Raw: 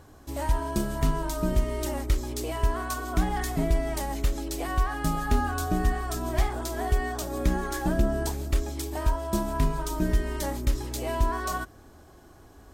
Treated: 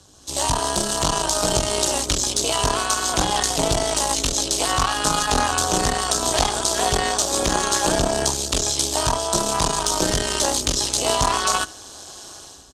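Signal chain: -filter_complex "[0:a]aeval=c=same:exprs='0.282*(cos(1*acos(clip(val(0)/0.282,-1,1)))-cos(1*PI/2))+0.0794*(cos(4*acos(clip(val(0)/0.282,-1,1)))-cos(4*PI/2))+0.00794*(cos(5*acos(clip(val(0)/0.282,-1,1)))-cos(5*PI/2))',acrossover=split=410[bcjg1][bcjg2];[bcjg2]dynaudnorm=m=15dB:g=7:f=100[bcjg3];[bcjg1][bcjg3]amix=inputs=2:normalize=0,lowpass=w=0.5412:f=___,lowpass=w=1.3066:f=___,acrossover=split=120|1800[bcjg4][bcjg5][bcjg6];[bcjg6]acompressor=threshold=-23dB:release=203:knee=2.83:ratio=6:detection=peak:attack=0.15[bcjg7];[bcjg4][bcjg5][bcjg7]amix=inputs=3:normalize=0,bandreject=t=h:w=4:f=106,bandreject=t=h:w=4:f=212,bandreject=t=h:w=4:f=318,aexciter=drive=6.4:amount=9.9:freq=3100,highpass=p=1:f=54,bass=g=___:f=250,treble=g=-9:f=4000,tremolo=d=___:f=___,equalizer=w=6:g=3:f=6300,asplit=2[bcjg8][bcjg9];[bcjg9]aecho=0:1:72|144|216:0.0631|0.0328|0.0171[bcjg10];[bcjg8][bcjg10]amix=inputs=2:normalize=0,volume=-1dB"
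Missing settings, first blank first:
9300, 9300, 3, 0.75, 210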